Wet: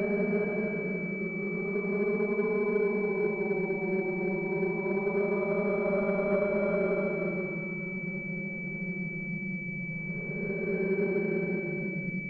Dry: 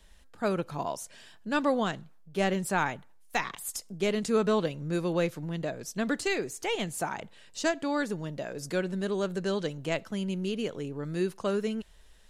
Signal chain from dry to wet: Paulstretch 34×, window 0.05 s, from 9.05; pulse-width modulation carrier 2300 Hz

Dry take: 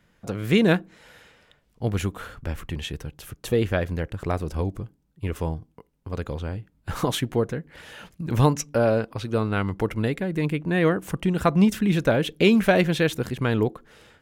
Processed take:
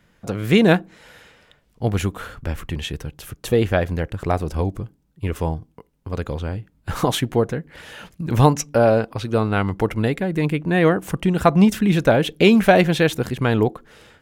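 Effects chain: dynamic EQ 760 Hz, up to +5 dB, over -39 dBFS, Q 3; gain +4 dB

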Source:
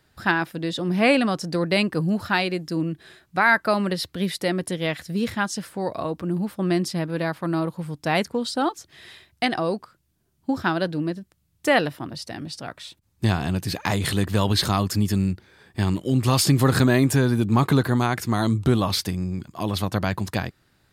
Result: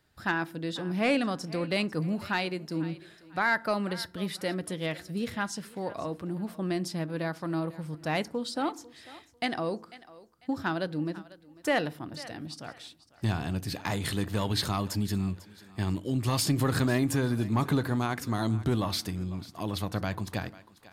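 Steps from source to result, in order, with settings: thinning echo 0.496 s, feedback 32%, high-pass 400 Hz, level -18 dB; soft clip -8 dBFS, distortion -24 dB; FDN reverb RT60 0.48 s, low-frequency decay 1.6×, high-frequency decay 0.5×, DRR 16.5 dB; gain -7 dB

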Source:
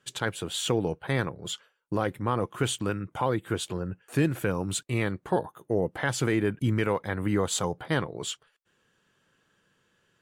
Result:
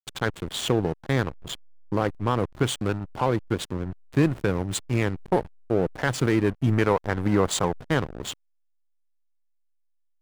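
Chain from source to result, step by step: backlash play -28 dBFS; 6.73–7.77 bell 910 Hz +4 dB 1.9 oct; gain +4 dB

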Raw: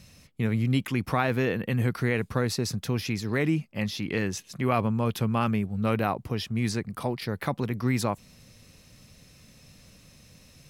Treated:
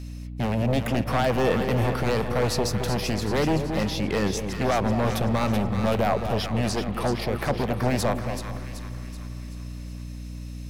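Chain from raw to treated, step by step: in parallel at 0 dB: limiter -18.5 dBFS, peak gain reduction 8.5 dB; on the sum: wavefolder -16.5 dBFS; split-band echo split 950 Hz, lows 0.22 s, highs 0.38 s, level -7.5 dB; on a send at -14 dB: reverb RT60 5.0 s, pre-delay 0.132 s; on the sum: dynamic EQ 610 Hz, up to +8 dB, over -41 dBFS, Q 1.1; hum 60 Hz, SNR 10 dB; gain -3.5 dB

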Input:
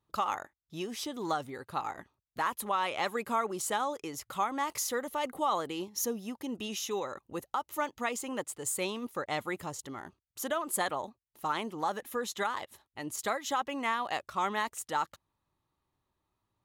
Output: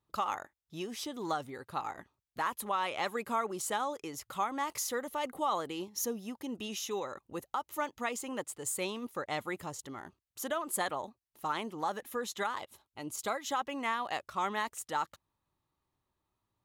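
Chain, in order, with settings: 12.58–13.35 notch 1800 Hz, Q 5.4; gain -2 dB

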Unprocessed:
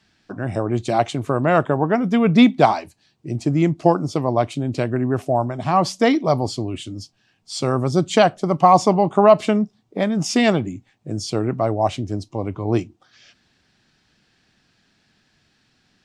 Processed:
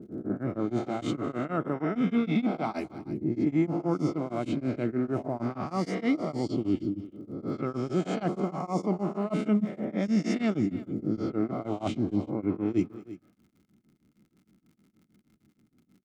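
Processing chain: spectral swells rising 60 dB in 1.02 s; low-pass opened by the level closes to 410 Hz, open at -12 dBFS; reverse; compressor 6:1, threshold -23 dBFS, peak gain reduction 16.5 dB; reverse; crackle 100/s -46 dBFS; small resonant body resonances 210/300/1300/2100 Hz, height 12 dB, ringing for 30 ms; on a send: tapped delay 0.217/0.338 s -18.5/-17.5 dB; on the sum: beating tremolo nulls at 6.4 Hz; gain -8 dB

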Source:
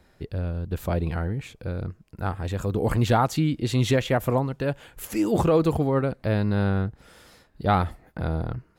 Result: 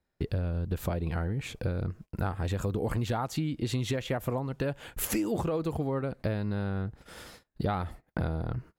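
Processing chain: compressor 16:1, threshold -33 dBFS, peak gain reduction 18.5 dB; gate -51 dBFS, range -29 dB; gain +6.5 dB

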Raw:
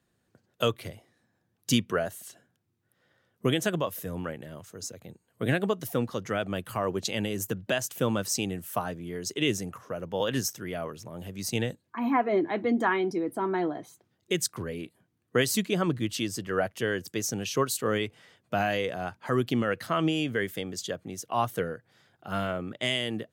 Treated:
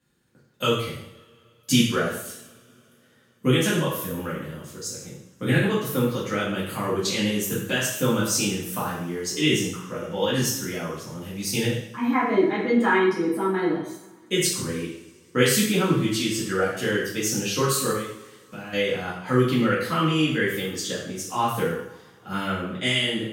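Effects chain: bell 680 Hz -12 dB 0.34 oct; 17.91–18.73 compressor 3:1, threshold -45 dBFS, peak gain reduction 15 dB; two-slope reverb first 0.67 s, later 3.4 s, from -27 dB, DRR -8.5 dB; gain -2.5 dB

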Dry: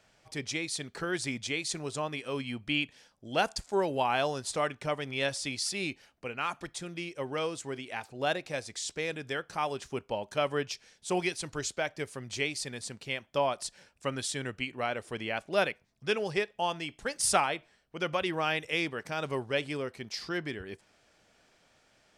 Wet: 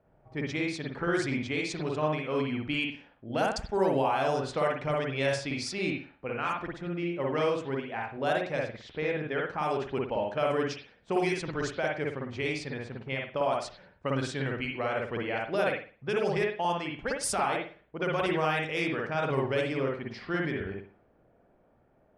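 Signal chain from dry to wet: low-pass opened by the level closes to 680 Hz, open at -25.5 dBFS; dynamic EQ 3200 Hz, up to -5 dB, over -46 dBFS, Q 1.2; limiter -23.5 dBFS, peak gain reduction 10.5 dB; 8.76–9.43 air absorption 130 m; reverb, pre-delay 52 ms, DRR -0.5 dB; gain +2.5 dB

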